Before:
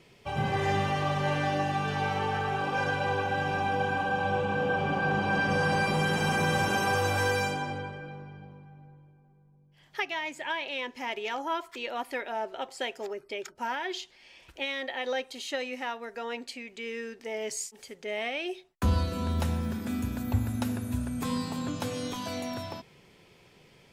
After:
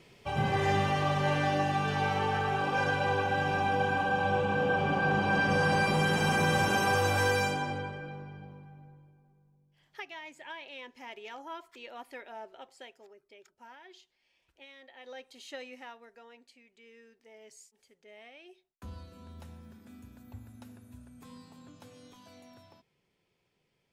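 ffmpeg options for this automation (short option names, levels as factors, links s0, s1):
-af "volume=3.16,afade=t=out:st=8.63:d=1.39:silence=0.281838,afade=t=out:st=12.39:d=0.68:silence=0.375837,afade=t=in:st=14.91:d=0.66:silence=0.316228,afade=t=out:st=15.57:d=0.76:silence=0.316228"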